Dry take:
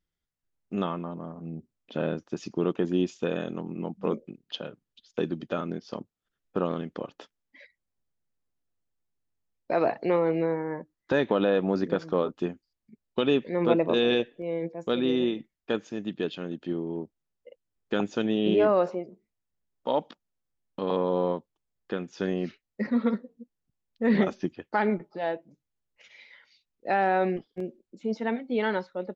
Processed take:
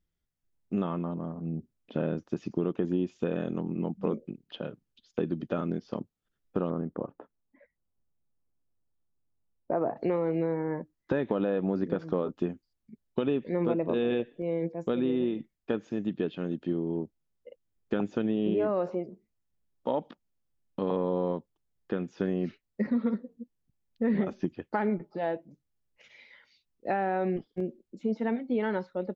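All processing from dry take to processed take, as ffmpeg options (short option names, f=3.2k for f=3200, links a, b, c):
-filter_complex "[0:a]asettb=1/sr,asplit=3[a][b][c];[a]atrim=end=6.704[d];[b]atrim=start=6.7:end=9.97,asetpts=PTS-STARTPTS,afade=t=in:d=0.004:c=qsin,afade=t=out:st=3.266:d=0.004:c=qsin,lowpass=f=1.3k:w=0.5412,lowpass=f=1.3k:w=1.3066,aemphasis=mode=production:type=75fm[e];[c]atrim=start=9.966[f];[d][e]acrossfade=d=0.004:c1=hsin:c2=qsin[g];[g][f]acrossfade=d=0.004:c1=qsin:c2=hsin,acrossover=split=3100[h][i];[i]acompressor=threshold=-58dB:ratio=4:attack=1:release=60[j];[h][j]amix=inputs=2:normalize=0,lowshelf=f=440:g=7.5,acompressor=threshold=-22dB:ratio=4,volume=-2.5dB"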